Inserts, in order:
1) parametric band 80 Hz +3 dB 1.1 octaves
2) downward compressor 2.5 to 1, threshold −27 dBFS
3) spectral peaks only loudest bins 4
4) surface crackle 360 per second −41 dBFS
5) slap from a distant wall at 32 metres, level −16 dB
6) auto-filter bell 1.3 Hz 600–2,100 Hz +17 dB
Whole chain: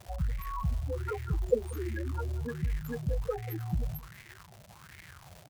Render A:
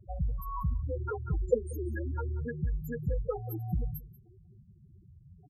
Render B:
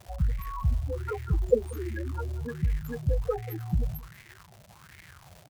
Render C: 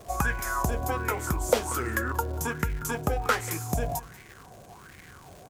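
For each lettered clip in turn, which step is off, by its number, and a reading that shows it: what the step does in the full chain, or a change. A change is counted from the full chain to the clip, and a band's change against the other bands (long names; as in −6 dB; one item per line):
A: 4, 8 kHz band −6.0 dB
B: 2, change in integrated loudness +3.5 LU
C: 3, 125 Hz band −12.0 dB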